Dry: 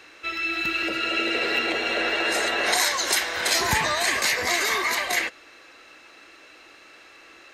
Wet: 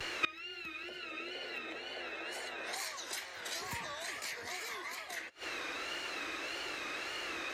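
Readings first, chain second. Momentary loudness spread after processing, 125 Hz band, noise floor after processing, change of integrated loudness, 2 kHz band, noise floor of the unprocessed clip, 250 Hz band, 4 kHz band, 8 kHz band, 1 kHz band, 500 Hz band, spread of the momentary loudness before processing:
4 LU, −17.0 dB, −48 dBFS, −17.5 dB, −15.5 dB, −50 dBFS, −16.0 dB, −15.0 dB, −17.5 dB, −15.5 dB, −16.0 dB, 4 LU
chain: tape wow and flutter 120 cents
frequency shifter +13 Hz
gate with flip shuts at −25 dBFS, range −27 dB
level +8.5 dB

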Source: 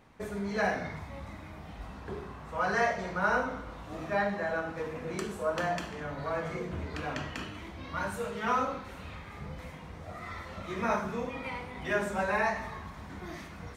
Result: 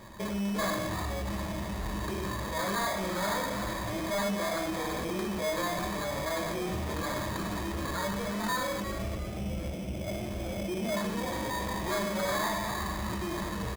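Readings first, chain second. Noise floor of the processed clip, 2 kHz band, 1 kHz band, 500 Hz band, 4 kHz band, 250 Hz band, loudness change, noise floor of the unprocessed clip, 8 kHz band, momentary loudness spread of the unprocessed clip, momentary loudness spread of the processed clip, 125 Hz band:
−36 dBFS, −2.0 dB, 0.0 dB, +0.5 dB, +9.0 dB, +5.0 dB, +1.0 dB, −46 dBFS, +11.0 dB, 15 LU, 6 LU, +4.5 dB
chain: notch filter 1,500 Hz, Q 14
gain on a spectral selection 0:08.81–0:10.97, 770–2,900 Hz −27 dB
EQ curve with evenly spaced ripples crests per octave 1.3, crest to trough 14 dB
in parallel at −1 dB: compressor whose output falls as the input rises −41 dBFS
on the sum: sample-rate reduction 2,800 Hz, jitter 0%
soft clipping −27 dBFS, distortion −10 dB
on a send: echo with shifted repeats 351 ms, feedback 34%, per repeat +110 Hz, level −10.5 dB

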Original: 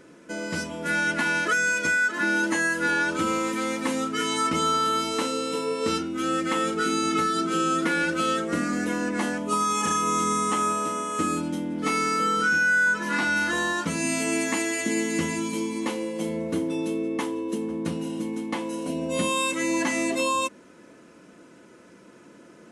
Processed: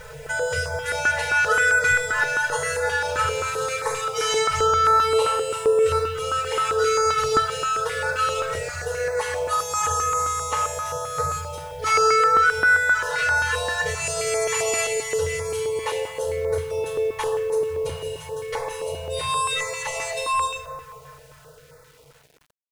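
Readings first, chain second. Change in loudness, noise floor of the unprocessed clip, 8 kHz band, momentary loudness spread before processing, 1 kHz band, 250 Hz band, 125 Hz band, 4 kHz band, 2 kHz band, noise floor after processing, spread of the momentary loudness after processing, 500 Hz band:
+3.0 dB, −51 dBFS, +3.0 dB, 8 LU, +4.0 dB, −20.5 dB, +2.0 dB, +2.5 dB, +2.5 dB, −50 dBFS, 11 LU, +6.5 dB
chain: fade-out on the ending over 4.60 s
low-shelf EQ 400 Hz +11 dB
bucket-brigade delay 178 ms, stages 2,048, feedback 52%, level −16.5 dB
rectangular room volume 3,400 cubic metres, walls furnished, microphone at 4.6 metres
downward compressor 2 to 1, threshold −32 dBFS, peak gain reduction 12.5 dB
comb filter 4.6 ms, depth 80%
brick-wall band-stop 160–440 Hz
bit reduction 10 bits
notch on a step sequencer 7.6 Hz 350–3,000 Hz
level +8 dB

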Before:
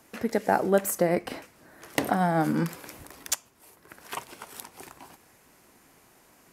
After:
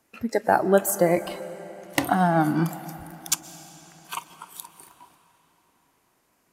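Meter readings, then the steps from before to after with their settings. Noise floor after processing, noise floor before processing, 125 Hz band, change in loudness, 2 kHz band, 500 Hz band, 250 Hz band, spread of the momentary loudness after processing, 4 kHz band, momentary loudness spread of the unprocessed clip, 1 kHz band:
−68 dBFS, −60 dBFS, +4.0 dB, +3.5 dB, +3.5 dB, +3.5 dB, +3.0 dB, 20 LU, +3.5 dB, 20 LU, +4.0 dB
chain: noise reduction from a noise print of the clip's start 14 dB
comb and all-pass reverb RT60 4.2 s, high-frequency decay 0.85×, pre-delay 90 ms, DRR 14 dB
level +4 dB

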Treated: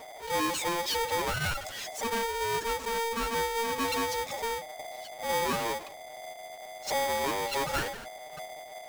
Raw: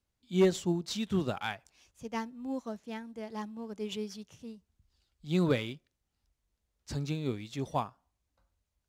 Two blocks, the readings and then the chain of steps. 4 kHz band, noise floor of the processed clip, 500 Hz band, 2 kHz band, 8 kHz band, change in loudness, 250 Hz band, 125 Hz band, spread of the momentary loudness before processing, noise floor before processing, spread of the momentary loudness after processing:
+9.0 dB, −46 dBFS, +2.5 dB, +11.0 dB, +12.5 dB, +3.5 dB, −6.0 dB, −7.0 dB, 18 LU, −84 dBFS, 14 LU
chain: expanding power law on the bin magnitudes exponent 2.6
downward compressor, threshold −34 dBFS, peak gain reduction 13 dB
power curve on the samples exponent 0.35
backwards echo 43 ms −15 dB
ring modulator with a square carrier 690 Hz
level +1 dB

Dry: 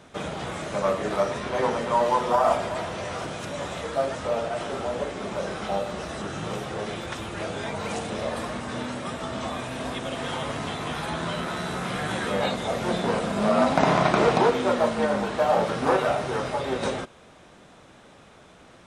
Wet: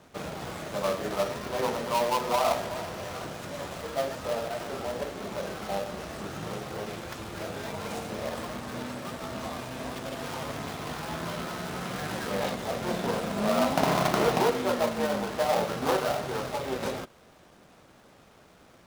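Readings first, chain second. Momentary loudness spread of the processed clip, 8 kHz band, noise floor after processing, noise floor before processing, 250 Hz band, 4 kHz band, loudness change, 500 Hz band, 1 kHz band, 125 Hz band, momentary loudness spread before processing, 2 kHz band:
12 LU, 0.0 dB, −56 dBFS, −51 dBFS, −4.5 dB, −2.5 dB, −4.5 dB, −4.5 dB, −5.0 dB, −4.5 dB, 11 LU, −4.5 dB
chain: gap after every zero crossing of 0.16 ms
level −4 dB

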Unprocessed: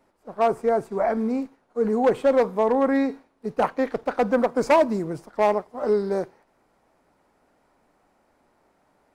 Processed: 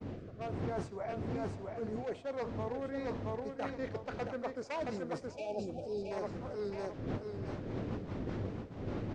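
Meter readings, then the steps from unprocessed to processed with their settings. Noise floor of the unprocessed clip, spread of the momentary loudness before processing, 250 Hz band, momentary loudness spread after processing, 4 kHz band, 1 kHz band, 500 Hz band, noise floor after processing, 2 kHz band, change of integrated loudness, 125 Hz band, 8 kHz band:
−66 dBFS, 10 LU, −13.5 dB, 3 LU, −10.0 dB, −17.5 dB, −16.0 dB, −49 dBFS, −14.0 dB, −16.5 dB, 0.0 dB, can't be measured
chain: wind on the microphone 260 Hz −26 dBFS
rotating-speaker cabinet horn 1.1 Hz, later 5 Hz, at 0:03.84
spectral tilt +2.5 dB per octave
repeating echo 673 ms, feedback 27%, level −7 dB
reversed playback
downward compressor 16 to 1, threshold −35 dBFS, peak gain reduction 22 dB
reversed playback
low-pass filter 6,600 Hz 24 dB per octave
time-frequency box erased 0:05.32–0:06.11, 840–2,300 Hz
feedback echo with a band-pass in the loop 571 ms, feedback 82%, band-pass 520 Hz, level −18 dB
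downward expander −44 dBFS
parametric band 100 Hz +10 dB 0.3 octaves

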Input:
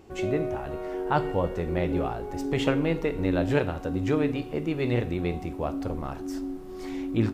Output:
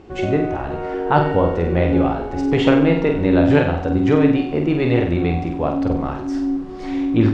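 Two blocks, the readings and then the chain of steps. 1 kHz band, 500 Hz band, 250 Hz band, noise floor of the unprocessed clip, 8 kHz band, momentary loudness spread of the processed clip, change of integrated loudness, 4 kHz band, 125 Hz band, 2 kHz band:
+10.0 dB, +9.0 dB, +11.0 dB, −39 dBFS, can't be measured, 9 LU, +10.0 dB, +7.5 dB, +9.5 dB, +9.0 dB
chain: high-frequency loss of the air 120 metres
flutter between parallel walls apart 8.1 metres, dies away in 0.52 s
level +8.5 dB

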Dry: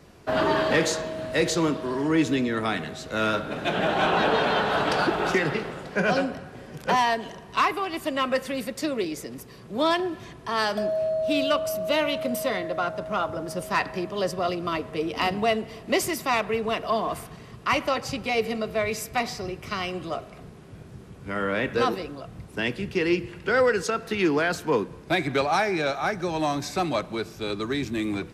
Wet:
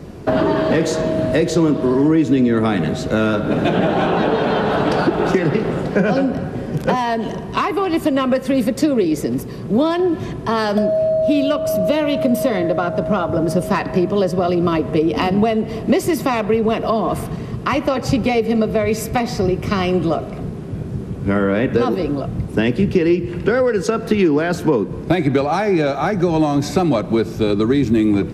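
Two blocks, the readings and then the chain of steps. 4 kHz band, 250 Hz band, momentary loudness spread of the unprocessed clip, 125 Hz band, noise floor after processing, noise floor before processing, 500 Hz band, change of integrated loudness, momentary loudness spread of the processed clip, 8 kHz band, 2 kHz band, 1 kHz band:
+1.0 dB, +12.0 dB, 10 LU, +13.5 dB, −28 dBFS, −45 dBFS, +8.5 dB, +8.0 dB, 5 LU, +2.5 dB, +1.5 dB, +4.0 dB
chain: parametric band 310 Hz +5 dB 2.8 octaves
downward compressor, threshold −25 dBFS, peak gain reduction 12.5 dB
low-shelf EQ 440 Hz +9.5 dB
level +7 dB

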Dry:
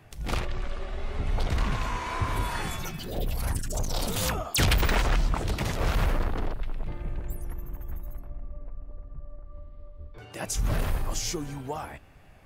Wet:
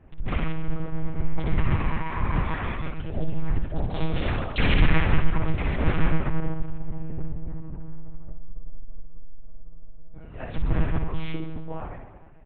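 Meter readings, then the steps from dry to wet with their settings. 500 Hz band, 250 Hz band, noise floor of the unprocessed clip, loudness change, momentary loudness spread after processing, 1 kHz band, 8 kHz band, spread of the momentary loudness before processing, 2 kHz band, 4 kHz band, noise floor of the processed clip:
+0.5 dB, +6.0 dB, −49 dBFS, +1.5 dB, 18 LU, −0.5 dB, below −40 dB, 20 LU, +1.5 dB, −4.5 dB, −41 dBFS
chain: adaptive Wiener filter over 9 samples
on a send: reverse bouncing-ball delay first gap 60 ms, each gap 1.2×, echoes 5
on the sum: dynamic equaliser 2,200 Hz, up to +8 dB, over −46 dBFS, Q 1.3
one-pitch LPC vocoder at 8 kHz 160 Hz
spectral tilt −2 dB per octave
level −4.5 dB

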